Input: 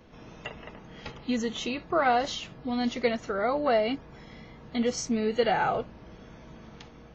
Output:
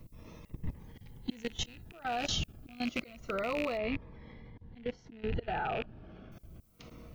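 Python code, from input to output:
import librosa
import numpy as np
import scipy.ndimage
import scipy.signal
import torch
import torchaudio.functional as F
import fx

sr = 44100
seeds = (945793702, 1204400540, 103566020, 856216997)

y = fx.rattle_buzz(x, sr, strikes_db=-38.0, level_db=-19.0)
y = fx.dmg_wind(y, sr, seeds[0], corner_hz=81.0, level_db=-32.0)
y = fx.low_shelf(y, sr, hz=100.0, db=-3.0)
y = fx.auto_swell(y, sr, attack_ms=391.0)
y = fx.level_steps(y, sr, step_db=18)
y = fx.dmg_noise_colour(y, sr, seeds[1], colour='violet', level_db=-76.0)
y = fx.bessel_lowpass(y, sr, hz=2600.0, order=4, at=(3.77, 6.32))
y = fx.notch_cascade(y, sr, direction='falling', hz=0.28)
y = F.gain(torch.from_numpy(y), 4.5).numpy()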